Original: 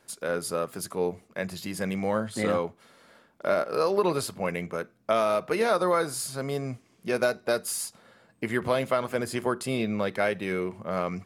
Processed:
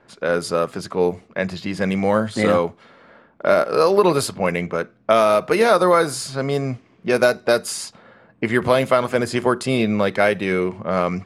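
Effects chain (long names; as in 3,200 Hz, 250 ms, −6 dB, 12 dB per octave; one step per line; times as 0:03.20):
low-pass that shuts in the quiet parts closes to 1,900 Hz, open at −22.5 dBFS
level +9 dB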